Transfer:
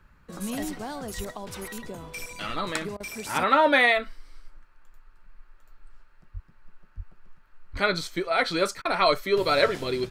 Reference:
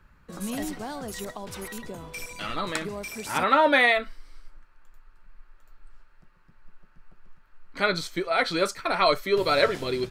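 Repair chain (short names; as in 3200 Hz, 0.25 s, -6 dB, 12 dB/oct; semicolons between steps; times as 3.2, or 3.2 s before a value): de-plosive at 1.16/6.33/6.96/7.72; interpolate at 2.97/8.82, 30 ms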